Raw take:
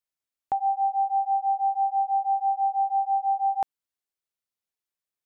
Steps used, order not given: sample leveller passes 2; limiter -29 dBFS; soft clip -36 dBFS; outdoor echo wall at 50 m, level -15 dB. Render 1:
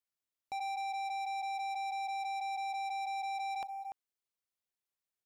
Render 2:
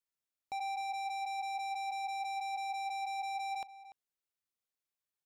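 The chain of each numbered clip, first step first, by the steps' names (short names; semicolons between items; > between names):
limiter > outdoor echo > sample leveller > soft clip; limiter > sample leveller > soft clip > outdoor echo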